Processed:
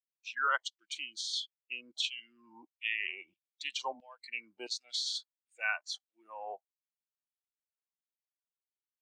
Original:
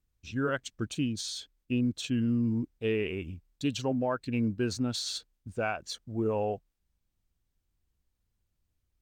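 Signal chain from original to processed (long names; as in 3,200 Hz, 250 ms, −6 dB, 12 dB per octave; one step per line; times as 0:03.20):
auto-filter high-pass saw down 1.5 Hz 790–3,500 Hz
noise reduction from a noise print of the clip's start 21 dB
three-way crossover with the lows and the highs turned down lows −13 dB, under 270 Hz, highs −17 dB, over 7,200 Hz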